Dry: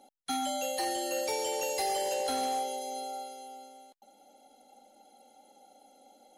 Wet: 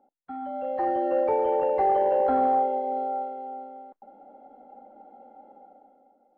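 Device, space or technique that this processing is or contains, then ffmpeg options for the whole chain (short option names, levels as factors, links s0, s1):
action camera in a waterproof case: -af "lowpass=f=1400:w=0.5412,lowpass=f=1400:w=1.3066,dynaudnorm=f=110:g=13:m=5.62,volume=0.562" -ar 16000 -c:a aac -b:a 48k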